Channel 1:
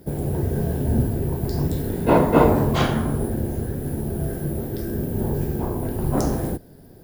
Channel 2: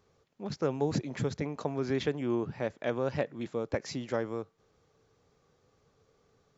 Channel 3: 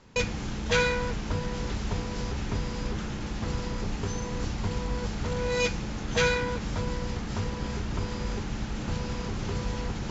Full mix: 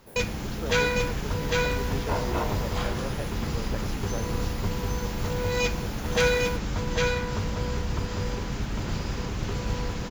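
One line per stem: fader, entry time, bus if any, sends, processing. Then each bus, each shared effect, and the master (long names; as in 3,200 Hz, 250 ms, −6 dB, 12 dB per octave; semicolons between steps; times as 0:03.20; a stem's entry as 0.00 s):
−9.5 dB, 0.00 s, no send, no echo send, high-pass filter 710 Hz 12 dB per octave
−6.0 dB, 0.00 s, no send, no echo send, no processing
+0.5 dB, 0.00 s, no send, echo send −3 dB, noise that follows the level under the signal 31 dB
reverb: not used
echo: single-tap delay 802 ms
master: no processing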